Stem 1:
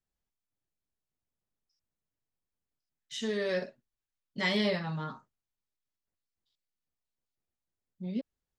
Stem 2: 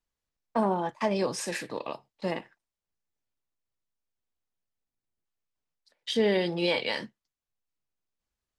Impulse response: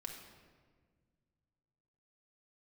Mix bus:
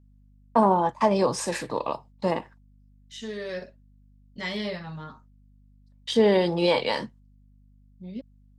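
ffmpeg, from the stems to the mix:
-filter_complex "[0:a]volume=-2.5dB[a];[1:a]agate=range=-18dB:threshold=-55dB:ratio=16:detection=peak,equalizer=f=125:t=o:w=1:g=11,equalizer=f=250:t=o:w=1:g=5,equalizer=f=500:t=o:w=1:g=6,equalizer=f=1k:t=o:w=1:g=12,equalizer=f=4k:t=o:w=1:g=4,equalizer=f=8k:t=o:w=1:g=7,volume=-3.5dB[b];[a][b]amix=inputs=2:normalize=0,aeval=exprs='val(0)+0.00178*(sin(2*PI*50*n/s)+sin(2*PI*2*50*n/s)/2+sin(2*PI*3*50*n/s)/3+sin(2*PI*4*50*n/s)/4+sin(2*PI*5*50*n/s)/5)':c=same"

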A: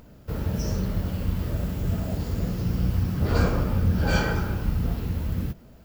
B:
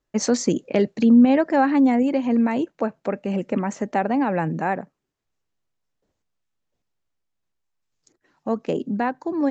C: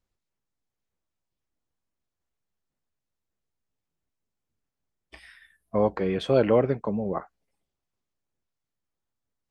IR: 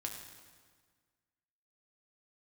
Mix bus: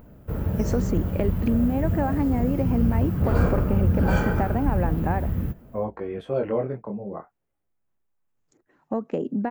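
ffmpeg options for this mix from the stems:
-filter_complex "[0:a]volume=1.5dB[a];[1:a]acompressor=threshold=-25dB:ratio=5,adelay=450,volume=2.5dB[b];[2:a]flanger=delay=17.5:depth=7.4:speed=0.35,volume=-1.5dB[c];[a][b][c]amix=inputs=3:normalize=0,equalizer=f=4.9k:w=0.72:g=-15"

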